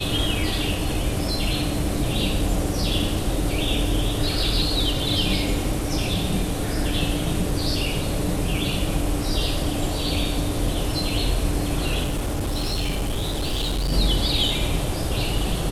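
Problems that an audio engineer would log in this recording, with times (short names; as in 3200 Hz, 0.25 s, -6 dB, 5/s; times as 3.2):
12.03–13.93 clipped -20.5 dBFS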